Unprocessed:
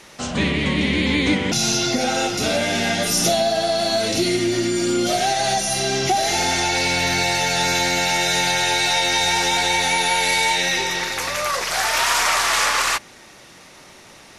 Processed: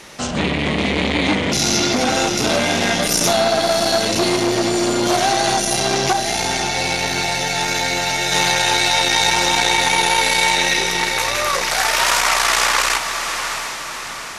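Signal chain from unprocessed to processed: 6.14–8.32 flange 1.9 Hz, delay 6.3 ms, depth 1.3 ms, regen -68%; diffused feedback echo 0.666 s, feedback 49%, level -9.5 dB; core saturation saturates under 1200 Hz; gain +5 dB

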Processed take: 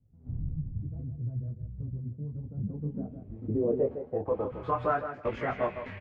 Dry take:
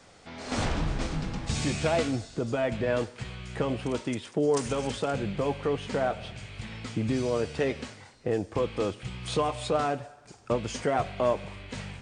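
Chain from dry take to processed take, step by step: time stretch by phase-locked vocoder 0.5×; low-pass sweep 120 Hz -> 2000 Hz, 2.3–5.17; on a send: feedback echo 0.158 s, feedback 17%, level -9 dB; on the sum: detuned doubles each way 20 cents

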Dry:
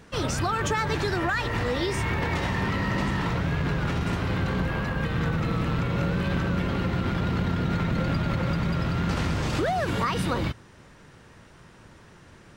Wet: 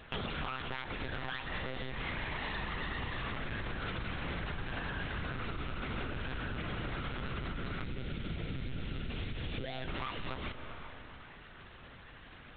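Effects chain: tracing distortion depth 0.42 ms; tilt shelf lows -5.5 dB, about 1500 Hz; band-limited delay 0.39 s, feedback 51%, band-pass 890 Hz, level -22.5 dB; monotone LPC vocoder at 8 kHz 130 Hz; 7.84–9.88 bell 1100 Hz -13 dB 1.8 oct; spring tank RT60 2.3 s, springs 38/42 ms, chirp 30 ms, DRR 13.5 dB; compressor 12:1, threshold -35 dBFS, peak gain reduction 16 dB; gain +1 dB

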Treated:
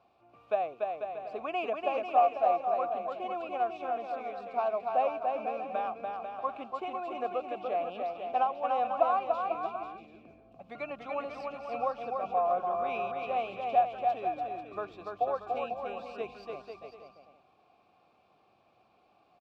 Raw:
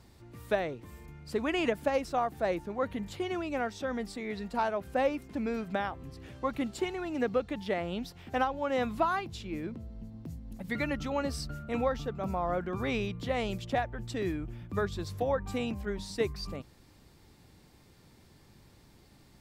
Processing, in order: median filter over 5 samples; vowel filter a; bouncing-ball echo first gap 0.29 s, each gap 0.7×, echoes 5; gain +8 dB

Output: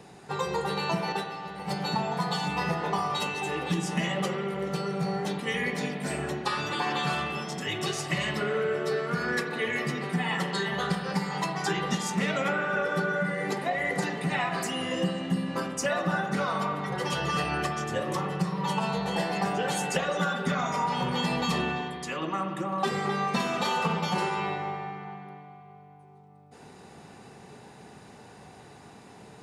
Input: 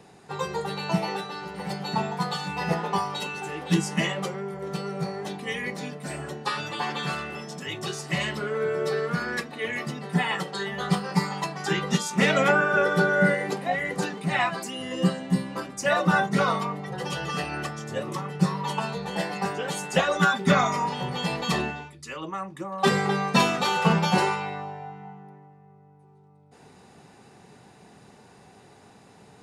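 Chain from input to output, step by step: 1.12–1.76 gate -31 dBFS, range -8 dB; compressor 10:1, threshold -27 dBFS, peak gain reduction 13 dB; spring tank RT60 2.6 s, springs 57 ms, chirp 40 ms, DRR 5 dB; gain +2 dB

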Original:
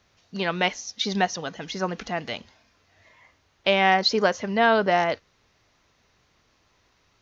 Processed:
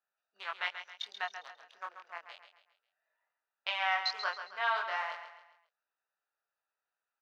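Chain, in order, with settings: Wiener smoothing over 41 samples; ladder high-pass 930 Hz, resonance 45%; chorus 0.32 Hz, delay 19.5 ms, depth 6 ms; feedback echo 0.135 s, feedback 41%, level -9.5 dB; gain +1 dB

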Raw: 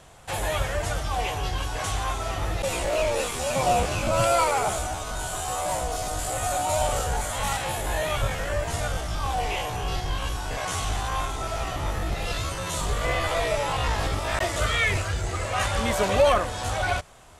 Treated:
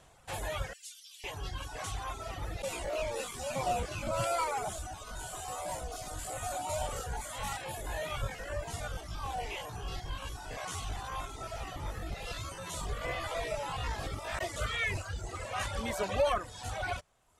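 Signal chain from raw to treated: reverb removal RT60 1.1 s; 0.73–1.24 inverse Chebyshev high-pass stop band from 530 Hz, stop band 80 dB; gain -8.5 dB

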